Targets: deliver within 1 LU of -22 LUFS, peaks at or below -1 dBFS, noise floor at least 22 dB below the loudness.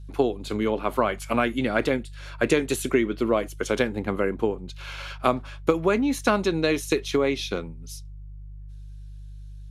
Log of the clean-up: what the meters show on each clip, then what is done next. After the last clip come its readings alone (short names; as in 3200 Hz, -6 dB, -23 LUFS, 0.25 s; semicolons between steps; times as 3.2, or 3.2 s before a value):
hum 50 Hz; harmonics up to 150 Hz; hum level -37 dBFS; loudness -25.0 LUFS; peak -6.5 dBFS; loudness target -22.0 LUFS
-> de-hum 50 Hz, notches 3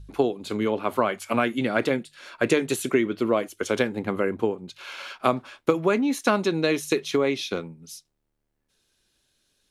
hum none; loudness -25.0 LUFS; peak -6.5 dBFS; loudness target -22.0 LUFS
-> gain +3 dB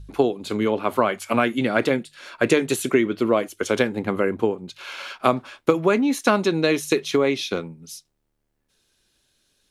loudness -22.0 LUFS; peak -3.5 dBFS; noise floor -74 dBFS